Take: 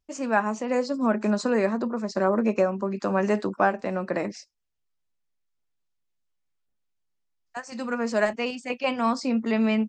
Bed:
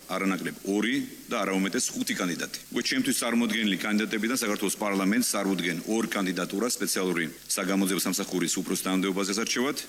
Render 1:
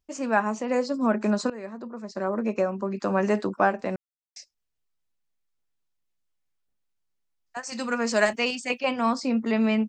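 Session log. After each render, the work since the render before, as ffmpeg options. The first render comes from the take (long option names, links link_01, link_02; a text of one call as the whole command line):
ffmpeg -i in.wav -filter_complex "[0:a]asettb=1/sr,asplit=3[link_01][link_02][link_03];[link_01]atrim=end=7.634[link_04];[link_02]atrim=start=7.63:end=8.8,asetpts=PTS-STARTPTS,afade=type=in:duration=0.004:curve=qsin,afade=type=out:start_time=1.166:duration=0.004:curve=qsin,highshelf=frequency=2100:gain=9.5[link_05];[link_03]atrim=start=8.796[link_06];[link_04][link_05]acrossfade=duration=0.004:curve1=hsin:curve2=qsin[link_07];[link_07][link_06]acrossfade=duration=0.004:curve1=qsin:curve2=hsin,asplit=4[link_08][link_09][link_10][link_11];[link_08]atrim=end=1.5,asetpts=PTS-STARTPTS,afade=type=out:start_time=1.496:duration=0.004:curve=hsin:silence=0.125893[link_12];[link_09]atrim=start=1.5:end=3.96,asetpts=PTS-STARTPTS,afade=type=in:duration=1.59:silence=0.125893,afade=type=out:start_time=2.456:duration=0.004:curve=hsin[link_13];[link_10]atrim=start=3.96:end=4.36,asetpts=PTS-STARTPTS,volume=0[link_14];[link_11]atrim=start=4.36,asetpts=PTS-STARTPTS,afade=type=in:duration=0.004:curve=hsin[link_15];[link_12][link_13][link_14][link_15]concat=n=4:v=0:a=1" out.wav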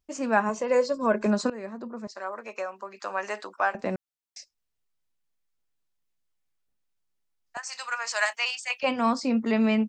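ffmpeg -i in.wav -filter_complex "[0:a]asettb=1/sr,asplit=3[link_01][link_02][link_03];[link_01]atrim=end=0.494[link_04];[link_02]atrim=start=0.49:end=1.26,asetpts=PTS-STARTPTS,afade=type=in:duration=0.004:curve=qsin,afade=type=out:start_time=0.766:duration=0.004:curve=qsin,aecho=1:1:1.9:0.59,atrim=end_sample=33957[link_05];[link_03]atrim=start=1.256[link_06];[link_04][link_05]acrossfade=duration=0.004:curve1=hsin:curve2=qsin[link_07];[link_07][link_06]acrossfade=duration=0.004:curve1=qsin:curve2=hsin,asettb=1/sr,asplit=3[link_08][link_09][link_10];[link_08]atrim=end=2.074[link_11];[link_09]atrim=start=2.07:end=3.75,asetpts=PTS-STARTPTS,afade=type=in:duration=0.004:curve=qsin,afade=type=out:start_time=1.676:duration=0.004:curve=qsin,highpass=870[link_12];[link_10]atrim=start=3.746[link_13];[link_11][link_12]acrossfade=duration=0.004:curve1=hsin:curve2=qsin[link_14];[link_14][link_13]acrossfade=duration=0.004:curve1=qsin:curve2=hsin,asettb=1/sr,asplit=3[link_15][link_16][link_17];[link_15]atrim=end=7.574[link_18];[link_16]atrim=start=7.57:end=8.83,asetpts=PTS-STARTPTS,afade=type=in:duration=0.004:curve=qsin,afade=type=out:start_time=1.256:duration=0.004:curve=qsin,highpass=frequency=840:width=0.5412,highpass=frequency=840:width=1.3066[link_19];[link_17]atrim=start=8.826[link_20];[link_18][link_19]acrossfade=duration=0.004:curve1=hsin:curve2=qsin[link_21];[link_21][link_20]acrossfade=duration=0.004:curve1=qsin:curve2=hsin" out.wav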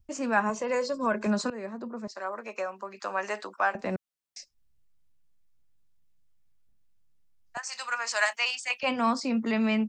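ffmpeg -i in.wav -filter_complex "[0:a]acrossover=split=190|800|3900[link_01][link_02][link_03][link_04];[link_01]acompressor=mode=upward:threshold=-50dB:ratio=2.5[link_05];[link_02]alimiter=level_in=2dB:limit=-24dB:level=0:latency=1,volume=-2dB[link_06];[link_05][link_06][link_03][link_04]amix=inputs=4:normalize=0" out.wav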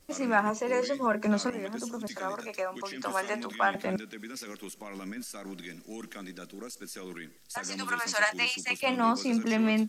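ffmpeg -i in.wav -i bed.wav -filter_complex "[1:a]volume=-15dB[link_01];[0:a][link_01]amix=inputs=2:normalize=0" out.wav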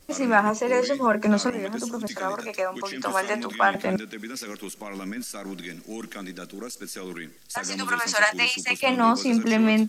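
ffmpeg -i in.wav -af "volume=6dB" out.wav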